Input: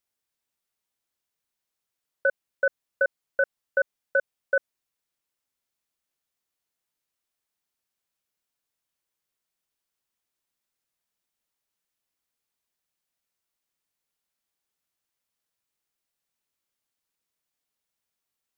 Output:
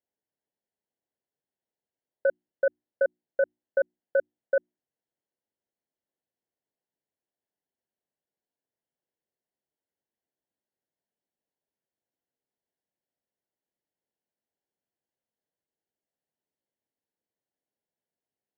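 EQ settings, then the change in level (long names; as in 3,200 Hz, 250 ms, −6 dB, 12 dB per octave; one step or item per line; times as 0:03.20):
moving average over 36 samples
high-pass filter 260 Hz 6 dB per octave
mains-hum notches 60/120/180/240/300/360 Hz
+6.0 dB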